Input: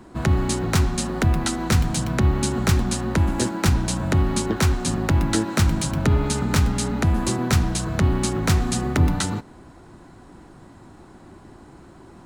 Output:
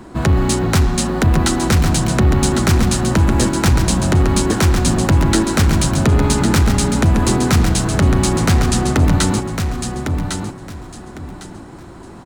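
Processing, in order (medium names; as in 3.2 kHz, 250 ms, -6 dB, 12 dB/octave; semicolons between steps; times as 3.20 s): saturation -15 dBFS, distortion -15 dB; on a send: feedback delay 1104 ms, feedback 23%, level -6.5 dB; 8.40–9.02 s: on the sum: loudspeaker Doppler distortion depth 0.22 ms; trim +8 dB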